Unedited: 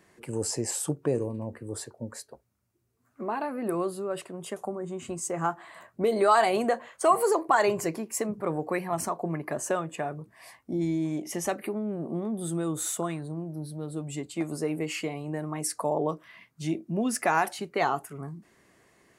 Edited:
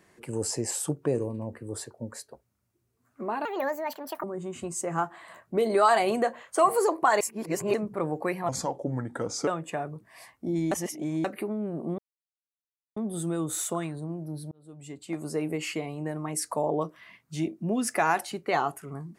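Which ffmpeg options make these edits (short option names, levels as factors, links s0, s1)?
-filter_complex "[0:a]asplit=11[s0][s1][s2][s3][s4][s5][s6][s7][s8][s9][s10];[s0]atrim=end=3.454[s11];[s1]atrim=start=3.45:end=4.7,asetpts=PTS-STARTPTS,asetrate=70119,aresample=44100[s12];[s2]atrim=start=4.696:end=7.672[s13];[s3]atrim=start=7.668:end=8.202,asetpts=PTS-STARTPTS,areverse[s14];[s4]atrim=start=8.198:end=8.954[s15];[s5]atrim=start=8.95:end=9.73,asetpts=PTS-STARTPTS,asetrate=34839,aresample=44100[s16];[s6]atrim=start=9.726:end=10.972[s17];[s7]atrim=start=10.968:end=11.502,asetpts=PTS-STARTPTS,areverse[s18];[s8]atrim=start=11.498:end=12.24,asetpts=PTS-STARTPTS,afade=t=out:st=0.738:d=0.004:c=hsin,apad=pad_dur=0.98[s19];[s9]atrim=start=12.24:end=13.79,asetpts=PTS-STARTPTS,afade=t=in:d=0.004:c=hsin,afade=t=out:st=1.546:d=0.004:c=hsin[s20];[s10]atrim=start=13.79,asetpts=PTS-STARTPTS,afade=t=in:d=0.88[s21];[s11][s12]acrossfade=d=0.004:c1=hsin:c2=hsin[s22];[s22][s13]acrossfade=d=0.004:c1=hsin:c2=hsin[s23];[s23][s14]acrossfade=d=0.004:c1=hsin:c2=hsin[s24];[s24][s15]acrossfade=d=0.004:c1=hsin:c2=hsin[s25];[s25][s16]acrossfade=d=0.004:c1=hsin:c2=hsin[s26];[s26][s17]acrossfade=d=0.004:c1=hsin:c2=hsin[s27];[s27][s18]acrossfade=d=0.004:c1=hsin:c2=hsin[s28];[s19][s20][s21]concat=n=3:v=0:a=1[s29];[s28][s29]acrossfade=d=0.004:c1=hsin:c2=hsin"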